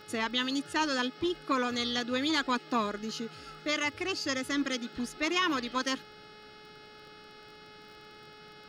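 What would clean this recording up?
de-click; de-hum 424.4 Hz, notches 13

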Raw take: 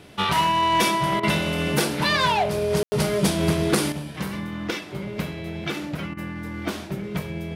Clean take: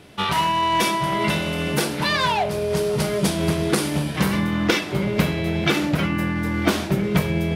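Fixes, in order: clip repair -10.5 dBFS; room tone fill 2.83–2.92; interpolate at 1.2/6.14, 30 ms; gain 0 dB, from 3.92 s +9 dB

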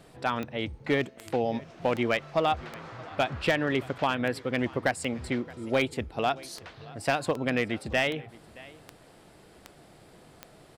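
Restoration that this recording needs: clip repair -16 dBFS; de-click; inverse comb 0.621 s -22 dB

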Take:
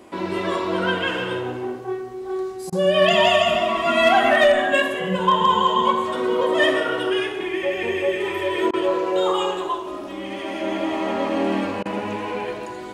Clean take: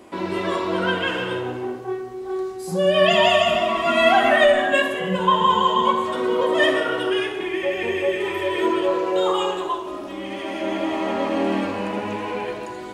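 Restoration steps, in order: clip repair -8 dBFS; interpolate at 2.7/8.71/11.83, 23 ms

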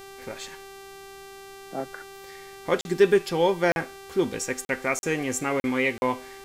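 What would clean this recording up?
de-hum 391.6 Hz, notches 39; interpolate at 2.81/3.72/4.65/4.99/5.6/5.98, 41 ms; expander -36 dBFS, range -21 dB

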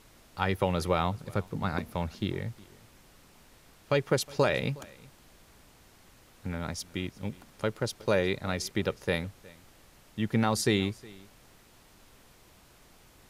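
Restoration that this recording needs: denoiser 18 dB, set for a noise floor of -58 dBFS; inverse comb 0.364 s -23 dB

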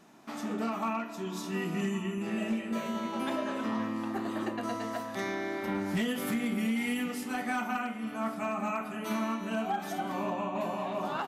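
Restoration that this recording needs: clip repair -24.5 dBFS; inverse comb 1.114 s -16.5 dB

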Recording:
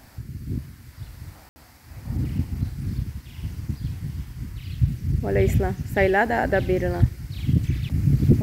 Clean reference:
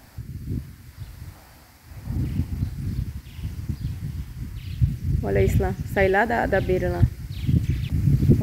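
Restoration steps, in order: room tone fill 1.49–1.56

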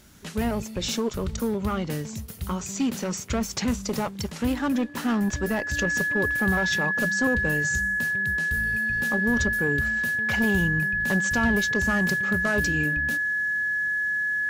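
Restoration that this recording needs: notch 1700 Hz, Q 30

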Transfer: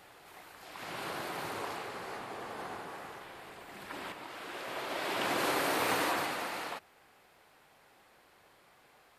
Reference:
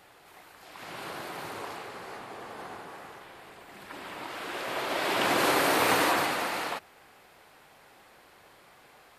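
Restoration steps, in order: clip repair -20 dBFS; gain correction +6.5 dB, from 4.12

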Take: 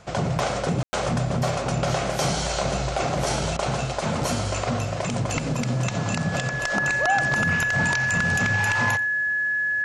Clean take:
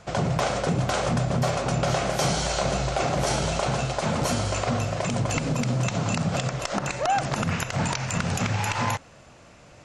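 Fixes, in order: notch 1700 Hz, Q 30; room tone fill 0.83–0.93; interpolate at 3.57, 17 ms; inverse comb 88 ms -20 dB

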